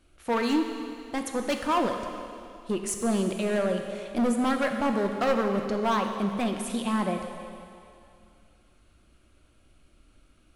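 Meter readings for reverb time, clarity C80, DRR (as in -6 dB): 2.4 s, 6.5 dB, 4.0 dB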